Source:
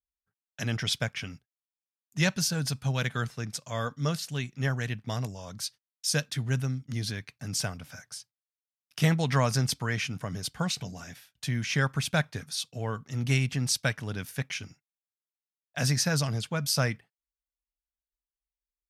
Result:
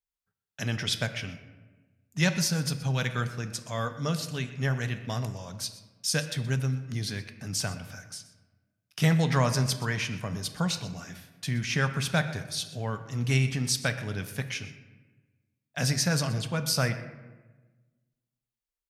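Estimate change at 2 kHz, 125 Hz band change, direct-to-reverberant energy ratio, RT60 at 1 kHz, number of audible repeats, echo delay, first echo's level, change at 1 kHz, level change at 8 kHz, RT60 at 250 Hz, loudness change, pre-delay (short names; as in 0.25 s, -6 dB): +0.5 dB, +1.0 dB, 8.5 dB, 1.2 s, 1, 0.124 s, -17.5 dB, +0.5 dB, +0.5 dB, 1.6 s, +0.5 dB, 4 ms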